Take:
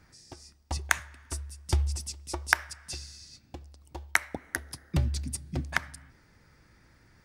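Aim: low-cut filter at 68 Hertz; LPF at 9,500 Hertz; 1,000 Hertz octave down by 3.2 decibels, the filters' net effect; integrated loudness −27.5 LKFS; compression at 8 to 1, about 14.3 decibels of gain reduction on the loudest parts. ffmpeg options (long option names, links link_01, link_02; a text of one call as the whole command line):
ffmpeg -i in.wav -af "highpass=68,lowpass=9500,equalizer=frequency=1000:width_type=o:gain=-4.5,acompressor=threshold=-36dB:ratio=8,volume=15.5dB" out.wav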